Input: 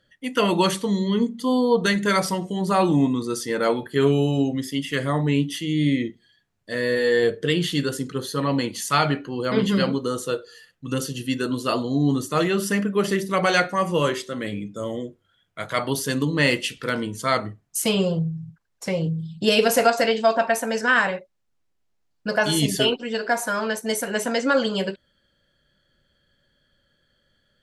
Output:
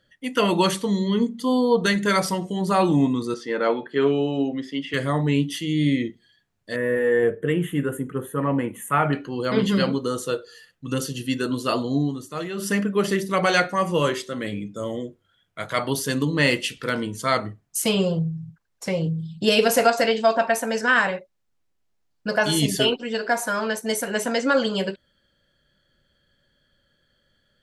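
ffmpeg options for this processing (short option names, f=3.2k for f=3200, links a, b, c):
-filter_complex "[0:a]asettb=1/sr,asplit=3[a][b][c];[a]atrim=end=3.344[d];[b]atrim=start=3.34:end=4.94,asetpts=PTS-STARTPTS,afade=t=in:d=0.004:c=qsin,afade=t=out:st=1.596:d=0.004:c=qsin,highpass=230,lowpass=3.2k[e];[c]atrim=start=4.936[f];[d][e]acrossfade=d=0.004:c1=hsin:c2=qsin[g];[g][f]acrossfade=d=0.004:c1=qsin:c2=hsin,asettb=1/sr,asplit=3[h][i][j];[h]atrim=end=6.764[k];[i]atrim=start=6.76:end=9.13,asetpts=PTS-STARTPTS,afade=t=in:d=0.004:c=qsin,afade=t=out:st=2.366:d=0.004:c=qsin,asuperstop=centerf=4800:order=4:qfactor=0.61[l];[j]atrim=start=9.126[m];[k][l]acrossfade=d=0.004:c1=hsin:c2=qsin[n];[n][m]acrossfade=d=0.004:c1=qsin:c2=hsin,asplit=3[o][p][q];[o]atrim=end=12.12,asetpts=PTS-STARTPTS,afade=t=out:st=11.98:d=0.14:silence=0.354813[r];[p]atrim=start=12.12:end=12.55,asetpts=PTS-STARTPTS,volume=-9dB[s];[q]atrim=start=12.55,asetpts=PTS-STARTPTS,afade=t=in:d=0.14:silence=0.354813[t];[r][s][t]concat=n=3:v=0:a=1"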